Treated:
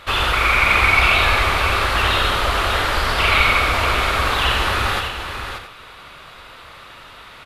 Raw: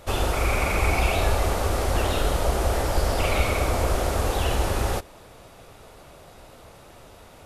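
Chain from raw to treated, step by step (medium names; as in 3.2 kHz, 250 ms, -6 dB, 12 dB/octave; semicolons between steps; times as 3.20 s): high-order bell 2.1 kHz +14 dB 2.4 oct; multi-tap echo 88/584/674 ms -5.5/-8/-16 dB; trim -1.5 dB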